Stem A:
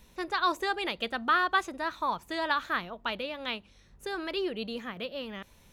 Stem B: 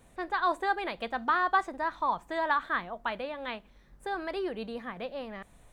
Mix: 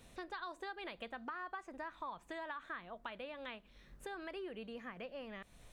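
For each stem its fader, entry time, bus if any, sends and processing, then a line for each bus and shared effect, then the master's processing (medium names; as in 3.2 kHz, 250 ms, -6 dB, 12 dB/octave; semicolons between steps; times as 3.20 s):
-14.5 dB, 0.00 s, no send, frequency weighting D; compression, threshold -31 dBFS, peak gain reduction 14.5 dB
-1.5 dB, 0.00 s, no send, peaking EQ 830 Hz -3.5 dB 0.51 oct; compression, threshold -29 dBFS, peak gain reduction 8 dB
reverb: none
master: compression 2:1, threshold -51 dBFS, peak gain reduction 12.5 dB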